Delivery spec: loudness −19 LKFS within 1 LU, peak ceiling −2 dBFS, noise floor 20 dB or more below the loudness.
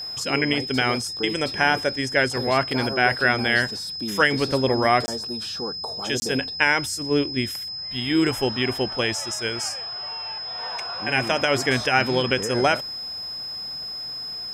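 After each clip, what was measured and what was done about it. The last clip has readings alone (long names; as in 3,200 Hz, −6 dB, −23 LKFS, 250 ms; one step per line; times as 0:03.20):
number of dropouts 2; longest dropout 20 ms; interfering tone 5,100 Hz; level of the tone −30 dBFS; integrated loudness −23.0 LKFS; sample peak −3.5 dBFS; target loudness −19.0 LKFS
→ repair the gap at 0:05.06/0:06.20, 20 ms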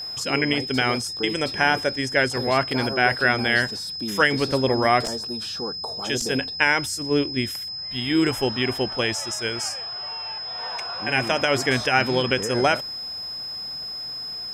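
number of dropouts 0; interfering tone 5,100 Hz; level of the tone −30 dBFS
→ notch filter 5,100 Hz, Q 30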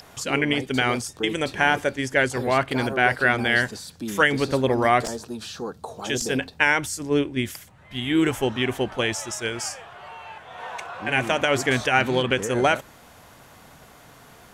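interfering tone none found; integrated loudness −23.0 LKFS; sample peak −3.5 dBFS; target loudness −19.0 LKFS
→ level +4 dB
brickwall limiter −2 dBFS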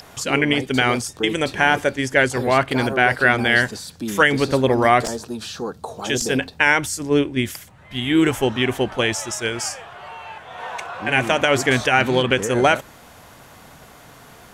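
integrated loudness −19.0 LKFS; sample peak −2.0 dBFS; background noise floor −46 dBFS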